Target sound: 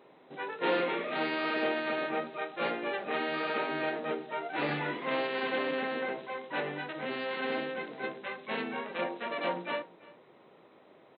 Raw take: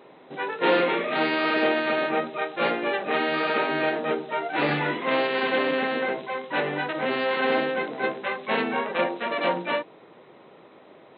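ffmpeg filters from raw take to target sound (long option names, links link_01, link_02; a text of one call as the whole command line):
ffmpeg -i in.wav -filter_complex "[0:a]asettb=1/sr,asplit=3[link_01][link_02][link_03];[link_01]atrim=end=6.724[link_04];[link_02]atrim=start=6.72:end=9.02,asetpts=PTS-STARTPTS,afade=type=in:duration=0.004:curve=qsin,afade=type=out:start_time=2.296:duration=0.004:curve=qsin,equalizer=frequency=810:width_type=o:width=2.1:gain=-3.5[link_05];[link_03]atrim=start=9.016[link_06];[link_04][link_05]acrossfade=duration=0.004:curve1=hsin:curve2=qsin[link_07];[link_07][link_06]acrossfade=duration=0.004:curve1=qsin:curve2=hsin,aecho=1:1:340:0.0841,volume=-8dB" out.wav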